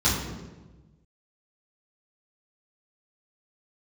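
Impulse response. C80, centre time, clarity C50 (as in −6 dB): 5.0 dB, 60 ms, 2.5 dB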